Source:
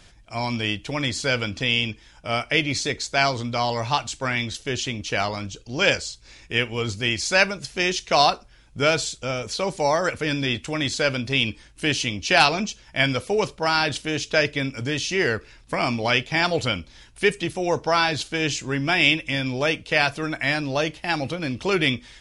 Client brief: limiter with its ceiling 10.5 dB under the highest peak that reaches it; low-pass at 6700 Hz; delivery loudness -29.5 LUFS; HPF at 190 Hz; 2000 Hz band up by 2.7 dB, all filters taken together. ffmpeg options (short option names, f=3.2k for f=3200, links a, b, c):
-af "highpass=190,lowpass=6.7k,equalizer=f=2k:t=o:g=3.5,volume=-5dB,alimiter=limit=-15dB:level=0:latency=1"